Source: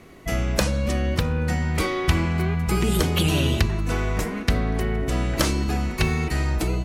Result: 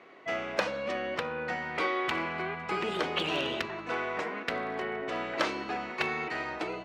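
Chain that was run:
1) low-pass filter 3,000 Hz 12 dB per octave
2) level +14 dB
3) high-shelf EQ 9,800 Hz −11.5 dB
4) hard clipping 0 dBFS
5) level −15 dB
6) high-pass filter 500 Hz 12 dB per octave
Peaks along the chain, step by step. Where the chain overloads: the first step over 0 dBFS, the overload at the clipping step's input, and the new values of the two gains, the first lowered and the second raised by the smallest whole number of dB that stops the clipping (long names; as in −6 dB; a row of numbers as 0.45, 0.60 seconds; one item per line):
−7.5, +6.5, +6.5, 0.0, −15.0, −10.0 dBFS
step 2, 6.5 dB
step 2 +7 dB, step 5 −8 dB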